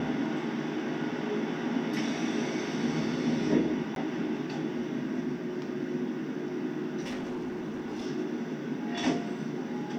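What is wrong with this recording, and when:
3.95–3.96 s: dropout
7.00–8.07 s: clipped -31.5 dBFS

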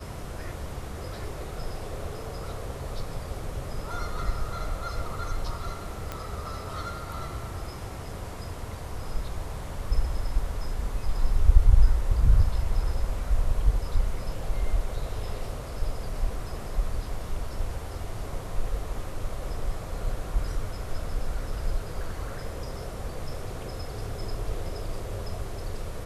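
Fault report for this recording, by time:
6.12 s: pop -18 dBFS

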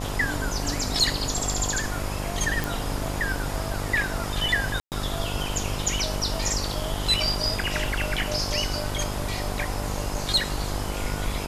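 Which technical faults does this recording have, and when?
buzz 50 Hz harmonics 21 -32 dBFS
2.64 s: pop
4.80–4.92 s: dropout 118 ms

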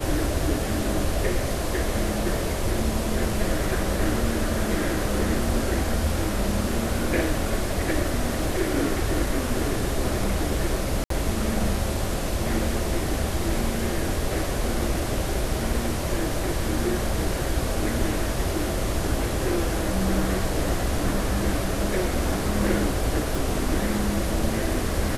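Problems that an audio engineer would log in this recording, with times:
11.04–11.10 s: dropout 63 ms
23.35 s: pop

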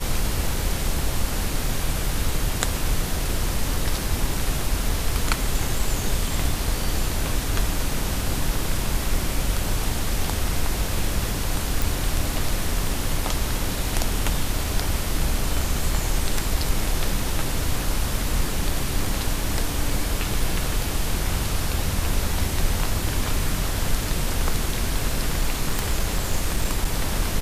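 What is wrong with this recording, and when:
11.82 s: pop
25.40–26.98 s: clipped -14.5 dBFS

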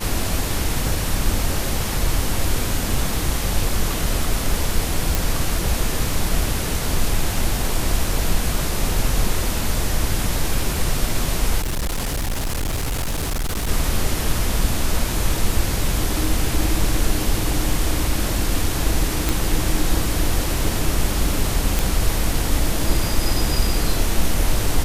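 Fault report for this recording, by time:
5.15 s: pop
11.60–13.69 s: clipped -19.5 dBFS
19.29 s: pop
21.79 s: pop

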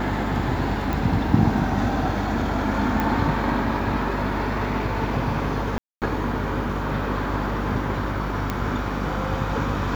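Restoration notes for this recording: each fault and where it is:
buzz 50 Hz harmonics 9 -29 dBFS
0.93 s: pop
3.00 s: pop
5.78–6.02 s: dropout 238 ms
8.50 s: pop -11 dBFS

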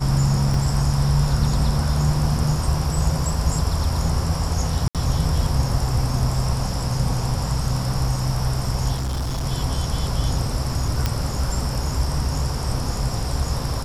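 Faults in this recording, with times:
0.54 s: dropout 2.3 ms
4.88–4.95 s: dropout 67 ms
8.94–9.46 s: clipped -21.5 dBFS
11.06 s: pop -7 dBFS

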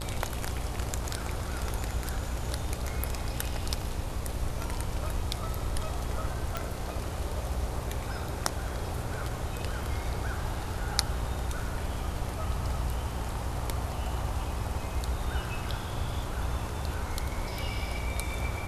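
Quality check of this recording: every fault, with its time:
buzz 60 Hz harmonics 13 -37 dBFS
6.57 s: pop -16 dBFS

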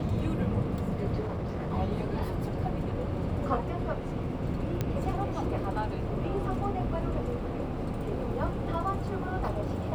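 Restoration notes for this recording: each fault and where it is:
1.19–1.73 s: clipped -29.5 dBFS
4.81 s: pop -16 dBFS

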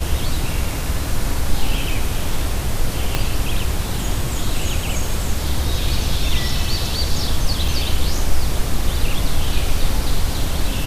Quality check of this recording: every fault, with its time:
3.15 s: pop -4 dBFS
7.68 s: dropout 3.1 ms

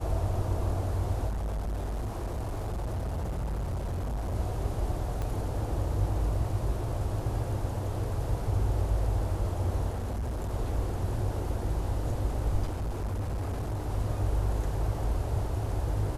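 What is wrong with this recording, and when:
1.28–4.35 s: clipped -29 dBFS
5.22 s: pop -22 dBFS
9.89–10.51 s: clipped -29 dBFS
12.67–13.89 s: clipped -28.5 dBFS

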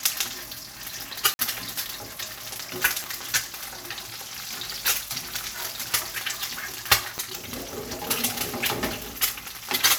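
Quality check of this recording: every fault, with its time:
1.34–1.39 s: dropout 51 ms
3.04 s: pop
7.18 s: pop -15 dBFS

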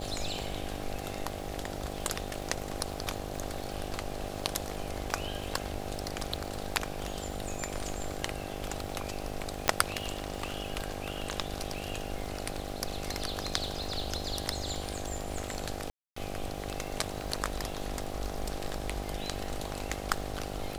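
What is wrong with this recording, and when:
buzz 50 Hz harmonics 16 -40 dBFS
crackle 280 per s -41 dBFS
9.68 s: pop -8 dBFS
15.90–16.16 s: dropout 264 ms

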